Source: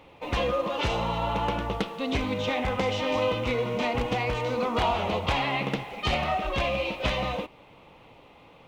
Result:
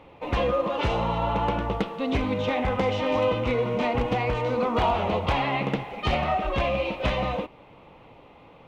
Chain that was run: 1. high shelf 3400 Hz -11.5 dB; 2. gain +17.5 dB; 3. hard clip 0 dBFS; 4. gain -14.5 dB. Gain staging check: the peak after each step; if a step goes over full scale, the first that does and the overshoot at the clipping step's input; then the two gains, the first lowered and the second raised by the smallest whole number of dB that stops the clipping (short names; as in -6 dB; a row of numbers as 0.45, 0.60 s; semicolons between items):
-13.5, +4.0, 0.0, -14.5 dBFS; step 2, 4.0 dB; step 2 +13.5 dB, step 4 -10.5 dB